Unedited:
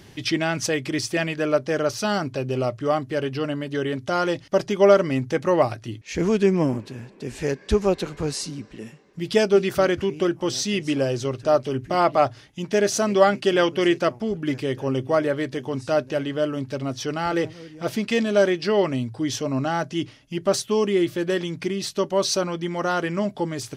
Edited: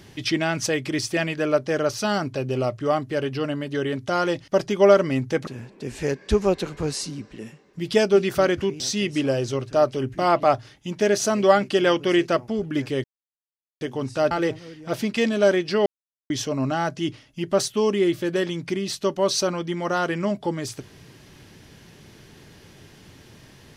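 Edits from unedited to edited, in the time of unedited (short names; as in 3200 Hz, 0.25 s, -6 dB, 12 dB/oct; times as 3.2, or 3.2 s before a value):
5.47–6.87 cut
10.2–10.52 cut
14.76–15.53 mute
16.03–17.25 cut
18.8–19.24 mute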